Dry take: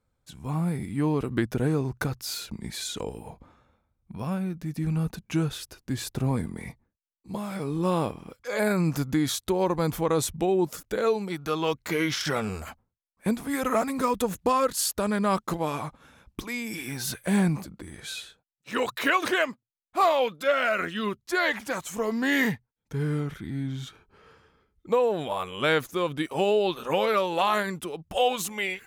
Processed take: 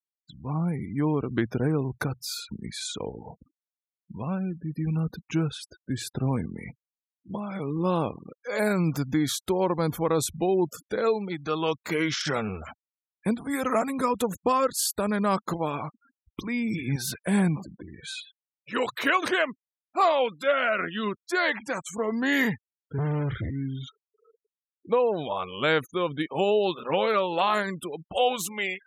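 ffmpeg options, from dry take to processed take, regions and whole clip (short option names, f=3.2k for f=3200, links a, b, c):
-filter_complex "[0:a]asettb=1/sr,asplit=3[a][b][c];[a]atrim=end=16.434[d];[b]atrim=start=16.43:end=16.96,asetpts=PTS-STARTPTS,afade=t=in:d=0.004:c=qsin,afade=t=out:st=0.526:d=0.004:c=qsin,highpass=f=51:p=1,bass=f=250:g=14,treble=f=4k:g=-6[e];[c]atrim=start=16.956[f];[d][e]acrossfade=d=0.004:c1=hsin:c2=qsin[g];[g][f]acrossfade=d=0.004:c1=qsin:c2=hsin,asettb=1/sr,asplit=3[h][i][j];[h]atrim=end=22.984[k];[i]atrim=start=22.98:end=23.5,asetpts=PTS-STARTPTS,afade=t=in:d=0.004:c=qsin,afade=t=out:st=0.516:d=0.004:c=qsin,lowshelf=f=140:t=q:w=3:g=6,acontrast=86,volume=25dB,asoftclip=hard,volume=-25dB[l];[j]atrim=start=23.496[m];[k][l]acrossfade=d=0.004:c1=hsin:c2=qsin[n];[n][m]acrossfade=d=0.004:c1=qsin:c2=hsin,highpass=73,afftfilt=real='re*gte(hypot(re,im),0.0112)':imag='im*gte(hypot(re,im),0.0112)':win_size=1024:overlap=0.75"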